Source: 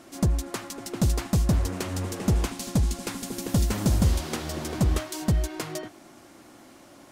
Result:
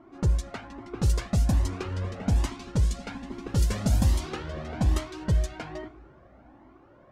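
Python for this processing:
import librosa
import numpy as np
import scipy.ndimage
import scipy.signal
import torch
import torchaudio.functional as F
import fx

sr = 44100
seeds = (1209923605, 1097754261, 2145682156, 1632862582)

y = fx.rev_double_slope(x, sr, seeds[0], early_s=0.44, late_s=4.2, knee_db=-19, drr_db=13.0)
y = fx.env_lowpass(y, sr, base_hz=1200.0, full_db=-17.5)
y = fx.comb_cascade(y, sr, direction='rising', hz=1.2)
y = F.gain(torch.from_numpy(y), 2.0).numpy()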